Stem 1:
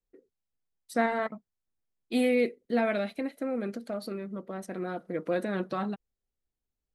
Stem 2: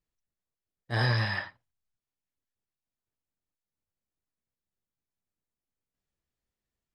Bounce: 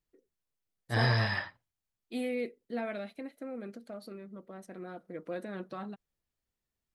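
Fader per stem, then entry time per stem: -9.0 dB, -1.0 dB; 0.00 s, 0.00 s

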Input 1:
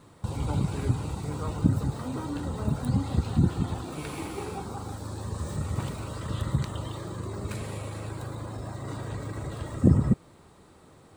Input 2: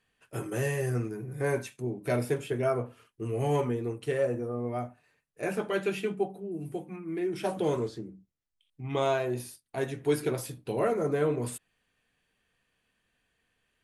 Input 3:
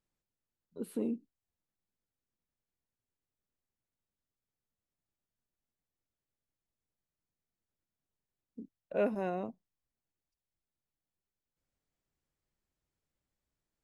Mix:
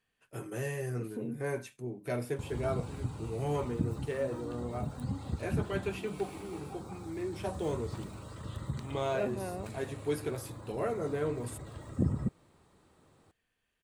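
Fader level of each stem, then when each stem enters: -10.0 dB, -6.0 dB, -4.0 dB; 2.15 s, 0.00 s, 0.20 s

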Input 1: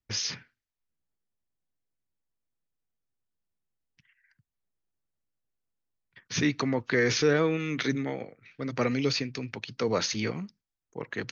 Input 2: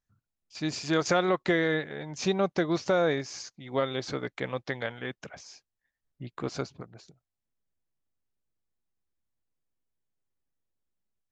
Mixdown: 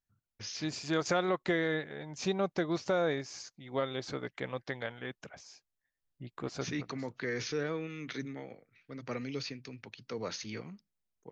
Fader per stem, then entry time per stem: -11.0 dB, -5.0 dB; 0.30 s, 0.00 s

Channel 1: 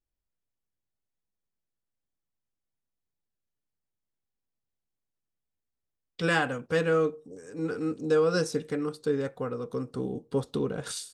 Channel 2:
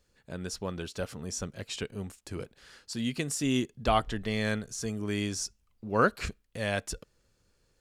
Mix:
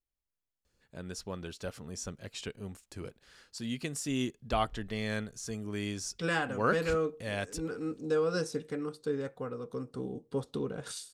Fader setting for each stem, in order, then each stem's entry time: -5.5 dB, -4.5 dB; 0.00 s, 0.65 s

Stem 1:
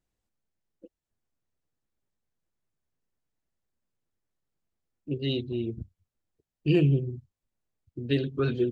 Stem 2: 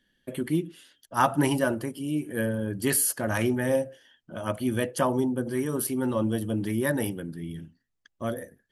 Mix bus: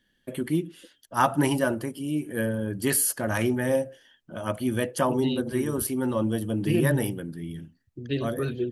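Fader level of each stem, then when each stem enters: -2.5 dB, +0.5 dB; 0.00 s, 0.00 s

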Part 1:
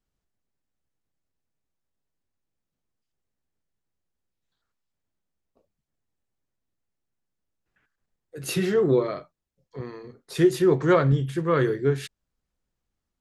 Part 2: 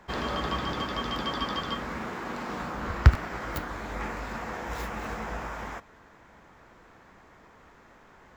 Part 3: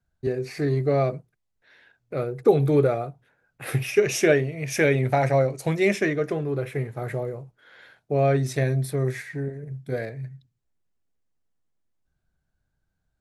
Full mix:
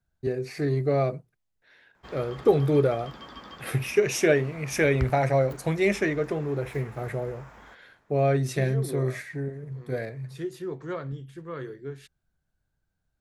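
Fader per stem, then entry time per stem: -14.5 dB, -13.0 dB, -2.0 dB; 0.00 s, 1.95 s, 0.00 s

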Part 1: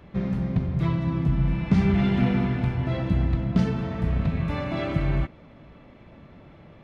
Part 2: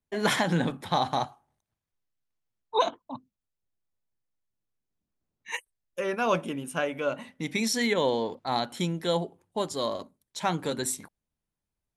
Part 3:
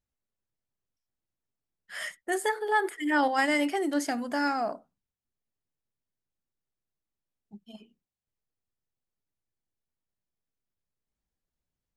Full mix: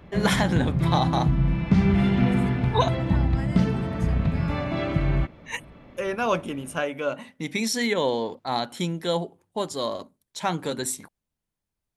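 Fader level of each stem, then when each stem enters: +1.0 dB, +1.5 dB, -15.5 dB; 0.00 s, 0.00 s, 0.00 s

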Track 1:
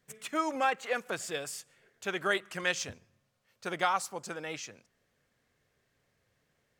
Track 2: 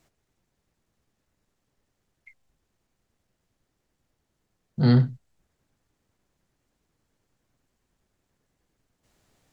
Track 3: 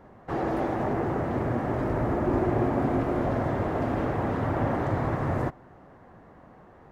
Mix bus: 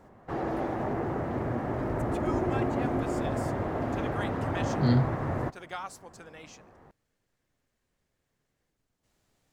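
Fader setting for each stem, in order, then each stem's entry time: -9.5 dB, -5.5 dB, -3.5 dB; 1.90 s, 0.00 s, 0.00 s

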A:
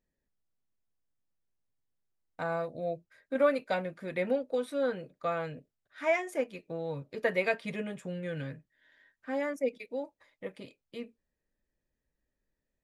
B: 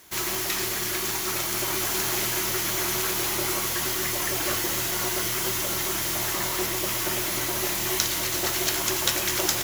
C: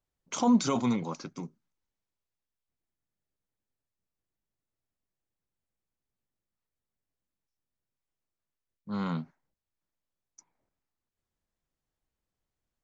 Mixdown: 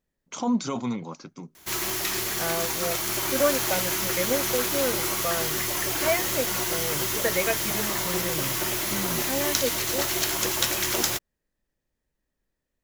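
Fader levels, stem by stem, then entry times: +2.5 dB, -0.5 dB, -1.5 dB; 0.00 s, 1.55 s, 0.00 s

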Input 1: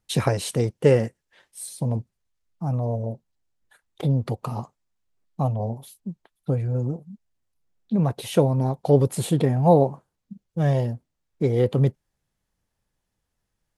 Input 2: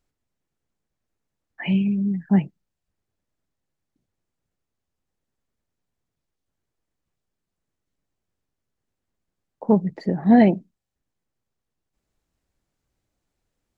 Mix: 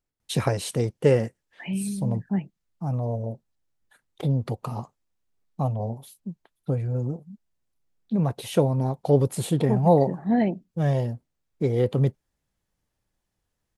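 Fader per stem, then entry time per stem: -2.0 dB, -8.0 dB; 0.20 s, 0.00 s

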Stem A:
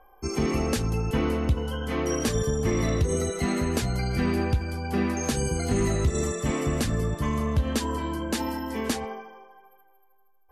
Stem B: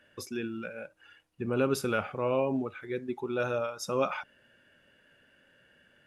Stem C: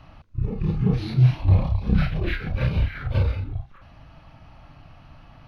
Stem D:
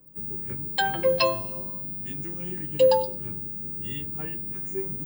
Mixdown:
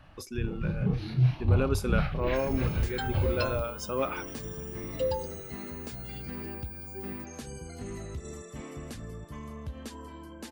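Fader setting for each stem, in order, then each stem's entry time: -15.0 dB, -1.5 dB, -7.0 dB, -11.5 dB; 2.10 s, 0.00 s, 0.00 s, 2.20 s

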